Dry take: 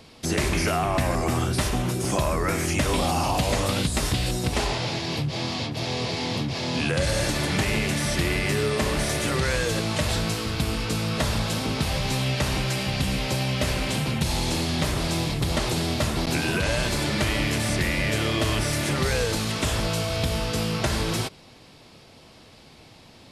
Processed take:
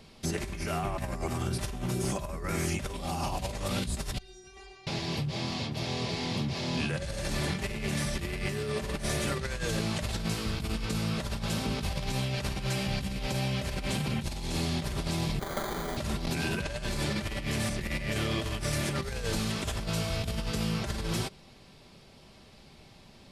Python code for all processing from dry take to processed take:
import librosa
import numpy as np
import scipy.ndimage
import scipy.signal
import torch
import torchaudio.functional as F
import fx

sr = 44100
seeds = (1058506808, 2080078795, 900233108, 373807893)

y = fx.chain(x, sr, fx.lowpass(hz=6500.0, slope=12),
    fx.stiff_resonator(f0_hz=380.0, decay_s=0.5, stiffness=0.002), at=(4.18, 4.87))
y = fx.chain(y, sr, fx.highpass(hz=380.0, slope=12),
    fx.sample_hold(seeds[0], rate_hz=2700.0, jitter_pct=0), at=(15.39, 15.97))
y = fx.low_shelf(y, sr, hz=110.0, db=8.5)
y = y + 0.35 * np.pad(y, (int(5.1 * sr / 1000.0), 0))[:len(y)]
y = fx.over_compress(y, sr, threshold_db=-23.0, ratio=-0.5)
y = y * 10.0 ** (-8.0 / 20.0)